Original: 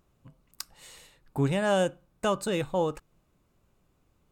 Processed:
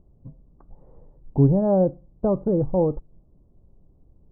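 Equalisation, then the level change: Bessel low-pass 500 Hz, order 6; low shelf 62 Hz +10.5 dB; +9.0 dB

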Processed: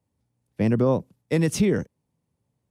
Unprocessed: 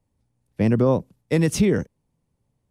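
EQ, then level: HPF 75 Hz; -2.0 dB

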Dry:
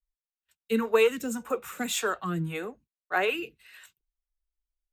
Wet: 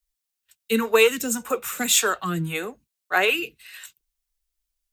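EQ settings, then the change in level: high shelf 2500 Hz +10.5 dB; +3.5 dB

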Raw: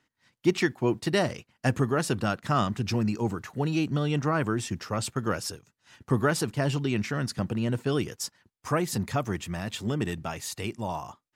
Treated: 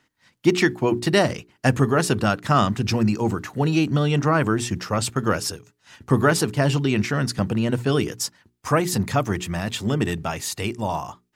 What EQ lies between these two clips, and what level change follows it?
notches 60/120/180/240/300/360/420 Hz; +7.0 dB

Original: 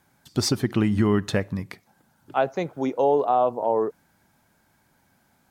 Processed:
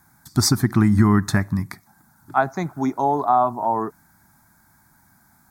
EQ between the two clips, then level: high shelf 11000 Hz +6.5 dB; fixed phaser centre 1200 Hz, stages 4; +8.0 dB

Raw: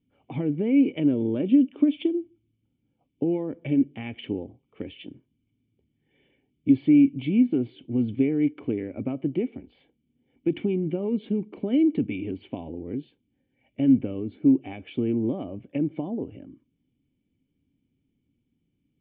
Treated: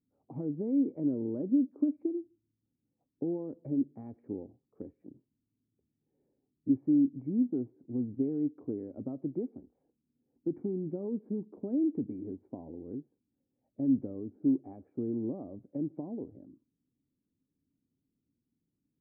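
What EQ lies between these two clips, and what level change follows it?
Gaussian blur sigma 9 samples; low shelf 120 Hz -8 dB; -6.5 dB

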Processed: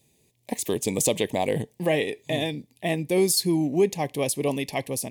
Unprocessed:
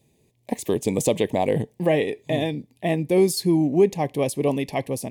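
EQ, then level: high shelf 2100 Hz +9.5 dB; -4.0 dB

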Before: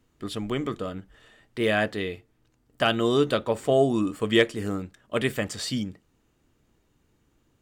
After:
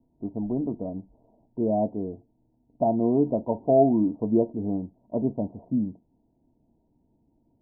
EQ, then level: rippled Chebyshev low-pass 960 Hz, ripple 9 dB; +5.0 dB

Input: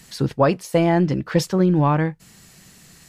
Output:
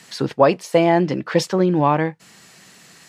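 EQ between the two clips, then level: tilt -1.5 dB/oct; dynamic EQ 1400 Hz, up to -6 dB, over -36 dBFS, Q 2.2; weighting filter A; +5.5 dB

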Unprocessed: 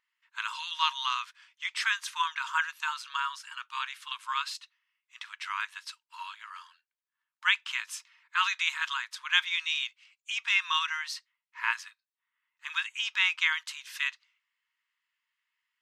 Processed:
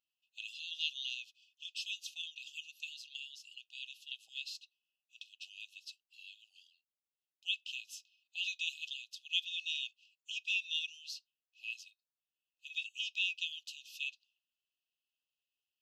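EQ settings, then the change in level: bell 9100 Hz -12.5 dB 0.36 oct; dynamic EQ 870 Hz, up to +4 dB, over -45 dBFS, Q 1.1; brick-wall FIR band-stop 820–2500 Hz; -6.0 dB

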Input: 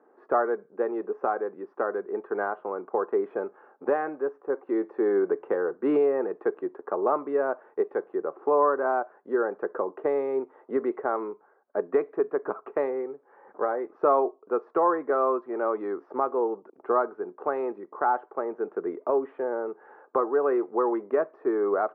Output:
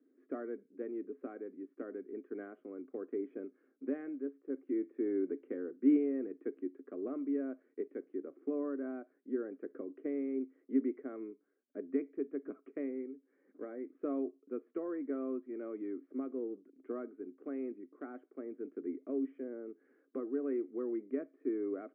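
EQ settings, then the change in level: dynamic EQ 700 Hz, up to +5 dB, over -37 dBFS, Q 2; vowel filter i; high shelf 2300 Hz -11.5 dB; +4.0 dB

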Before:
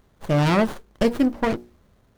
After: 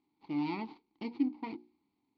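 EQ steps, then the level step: vowel filter u; ladder low-pass 4700 Hz, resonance 80%; low shelf 70 Hz -8 dB; +7.5 dB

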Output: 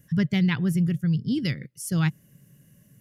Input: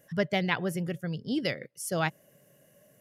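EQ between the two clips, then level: tone controls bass +15 dB, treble +2 dB; bell 630 Hz -15 dB 0.89 oct; 0.0 dB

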